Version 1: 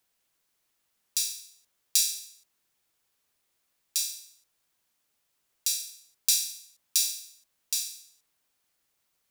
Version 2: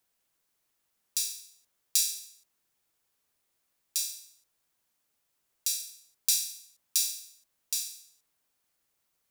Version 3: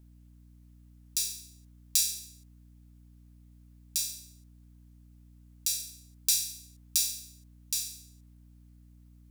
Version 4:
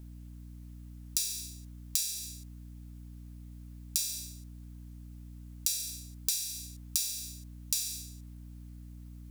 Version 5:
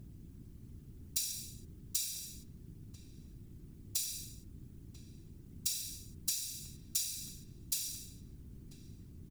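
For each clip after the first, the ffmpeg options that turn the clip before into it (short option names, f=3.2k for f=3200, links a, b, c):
-af "equalizer=f=3.3k:t=o:w=2.1:g=-2.5,volume=-1dB"
-af "aeval=exprs='val(0)+0.002*(sin(2*PI*60*n/s)+sin(2*PI*2*60*n/s)/2+sin(2*PI*3*60*n/s)/3+sin(2*PI*4*60*n/s)/4+sin(2*PI*5*60*n/s)/5)':c=same"
-af "acompressor=threshold=-35dB:ratio=12,volume=8.5dB"
-filter_complex "[0:a]afftfilt=real='hypot(re,im)*cos(2*PI*random(0))':imag='hypot(re,im)*sin(2*PI*random(1))':win_size=512:overlap=0.75,asplit=2[a][b];[b]adelay=991.3,volume=-11dB,highshelf=f=4k:g=-22.3[c];[a][c]amix=inputs=2:normalize=0,volume=1.5dB"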